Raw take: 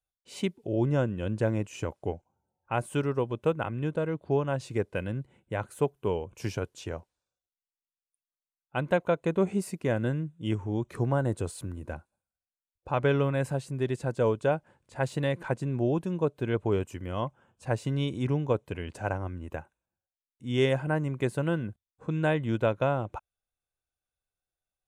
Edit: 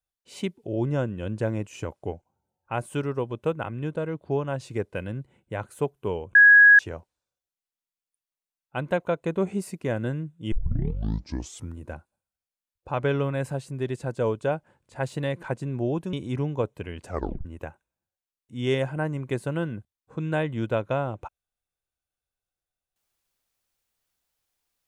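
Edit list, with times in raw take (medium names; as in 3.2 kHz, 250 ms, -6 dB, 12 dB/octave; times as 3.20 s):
6.35–6.79 s: bleep 1.66 kHz -9.5 dBFS
10.52 s: tape start 1.26 s
16.13–18.04 s: delete
18.99 s: tape stop 0.37 s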